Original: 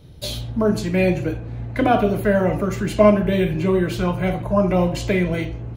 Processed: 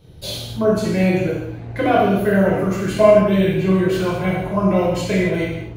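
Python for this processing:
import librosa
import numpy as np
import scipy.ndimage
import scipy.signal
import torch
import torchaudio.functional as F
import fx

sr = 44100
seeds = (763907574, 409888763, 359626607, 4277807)

y = fx.rev_gated(x, sr, seeds[0], gate_ms=300, shape='falling', drr_db=-5.0)
y = F.gain(torch.from_numpy(y), -4.0).numpy()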